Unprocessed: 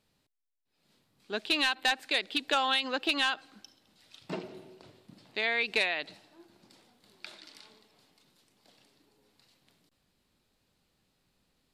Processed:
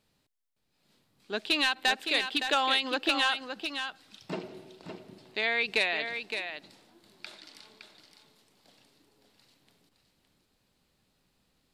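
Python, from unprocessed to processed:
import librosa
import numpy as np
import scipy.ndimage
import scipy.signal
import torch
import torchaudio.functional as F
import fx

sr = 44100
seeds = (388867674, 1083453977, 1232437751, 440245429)

y = x + 10.0 ** (-7.5 / 20.0) * np.pad(x, (int(564 * sr / 1000.0), 0))[:len(x)]
y = y * librosa.db_to_amplitude(1.0)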